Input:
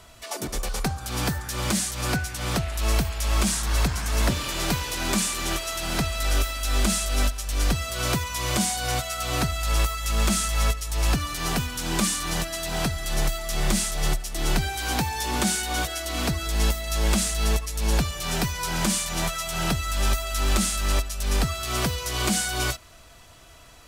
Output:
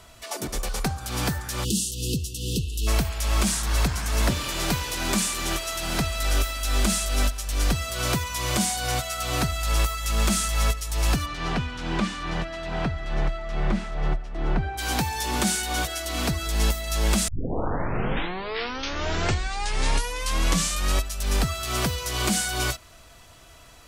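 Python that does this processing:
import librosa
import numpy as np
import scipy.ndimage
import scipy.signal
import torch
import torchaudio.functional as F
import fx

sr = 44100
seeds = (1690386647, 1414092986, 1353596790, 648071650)

y = fx.spec_erase(x, sr, start_s=1.64, length_s=1.23, low_hz=500.0, high_hz=2600.0)
y = fx.lowpass(y, sr, hz=fx.line((11.25, 3500.0), (14.77, 1400.0)), slope=12, at=(11.25, 14.77), fade=0.02)
y = fx.edit(y, sr, fx.tape_start(start_s=17.28, length_s=3.78), tone=tone)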